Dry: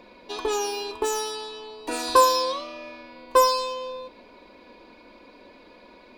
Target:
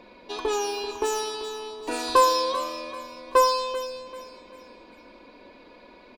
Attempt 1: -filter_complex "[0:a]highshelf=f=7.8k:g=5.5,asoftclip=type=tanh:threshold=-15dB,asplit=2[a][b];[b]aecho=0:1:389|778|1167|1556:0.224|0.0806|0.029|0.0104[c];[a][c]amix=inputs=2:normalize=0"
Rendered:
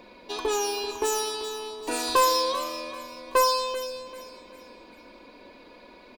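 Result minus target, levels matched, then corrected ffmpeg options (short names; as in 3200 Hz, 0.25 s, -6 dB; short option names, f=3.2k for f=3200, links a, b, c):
soft clip: distortion +10 dB; 8000 Hz band +4.5 dB
-filter_complex "[0:a]highshelf=f=7.8k:g=-5.5,asoftclip=type=tanh:threshold=-7.5dB,asplit=2[a][b];[b]aecho=0:1:389|778|1167|1556:0.224|0.0806|0.029|0.0104[c];[a][c]amix=inputs=2:normalize=0"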